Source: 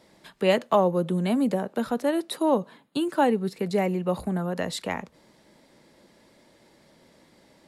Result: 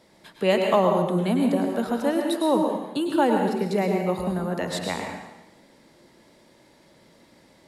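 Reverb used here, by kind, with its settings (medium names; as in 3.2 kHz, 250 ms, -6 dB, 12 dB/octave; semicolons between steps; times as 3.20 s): plate-style reverb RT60 1 s, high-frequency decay 0.95×, pre-delay 90 ms, DRR 2 dB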